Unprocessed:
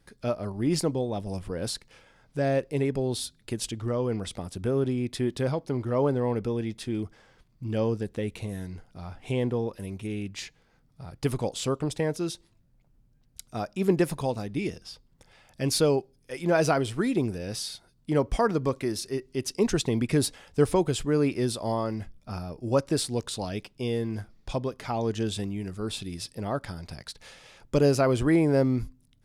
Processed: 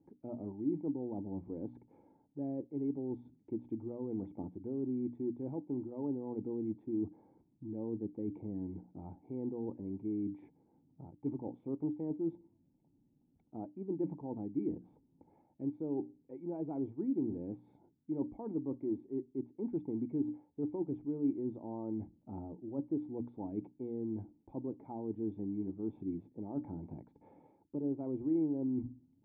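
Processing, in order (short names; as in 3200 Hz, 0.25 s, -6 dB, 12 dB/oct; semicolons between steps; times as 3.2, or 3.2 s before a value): HPF 98 Hz 12 dB/oct; notches 60/120/180/240/300 Hz; reverse; compressor 5:1, threshold -37 dBFS, peak gain reduction 18 dB; reverse; vocal tract filter u; gain +9.5 dB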